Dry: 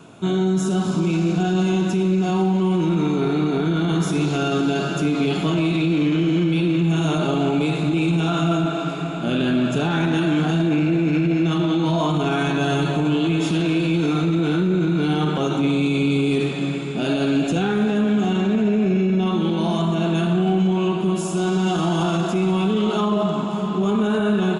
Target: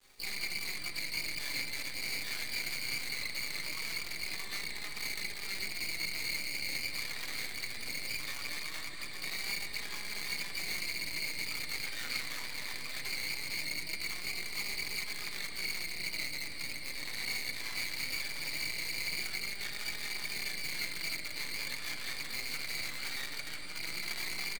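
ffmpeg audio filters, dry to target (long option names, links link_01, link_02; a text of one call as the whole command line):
ffmpeg -i in.wav -filter_complex "[0:a]adynamicequalizer=threshold=0.0282:dfrequency=420:dqfactor=1.2:tfrequency=420:tqfactor=1.2:attack=5:release=100:ratio=0.375:range=2:mode=boostabove:tftype=bell,alimiter=limit=-17dB:level=0:latency=1:release=112,areverse,acompressor=mode=upward:threshold=-37dB:ratio=2.5,areverse,lowpass=frequency=2100:width_type=q:width=0.5098,lowpass=frequency=2100:width_type=q:width=0.6013,lowpass=frequency=2100:width_type=q:width=0.9,lowpass=frequency=2100:width_type=q:width=2.563,afreqshift=-2500,afftfilt=real='hypot(re,im)*cos(2*PI*random(0))':imag='hypot(re,im)*sin(2*PI*random(1))':win_size=512:overlap=0.75,acrusher=bits=5:dc=4:mix=0:aa=0.000001,flanger=delay=4.8:depth=3.2:regen=-9:speed=0.2:shape=sinusoidal,asplit=6[link_01][link_02][link_03][link_04][link_05][link_06];[link_02]adelay=356,afreqshift=-150,volume=-20dB[link_07];[link_03]adelay=712,afreqshift=-300,volume=-24.2dB[link_08];[link_04]adelay=1068,afreqshift=-450,volume=-28.3dB[link_09];[link_05]adelay=1424,afreqshift=-600,volume=-32.5dB[link_10];[link_06]adelay=1780,afreqshift=-750,volume=-36.6dB[link_11];[link_01][link_07][link_08][link_09][link_10][link_11]amix=inputs=6:normalize=0,asplit=3[link_12][link_13][link_14];[link_13]asetrate=55563,aresample=44100,atempo=0.793701,volume=-14dB[link_15];[link_14]asetrate=88200,aresample=44100,atempo=0.5,volume=-1dB[link_16];[link_12][link_15][link_16]amix=inputs=3:normalize=0,volume=-7.5dB" out.wav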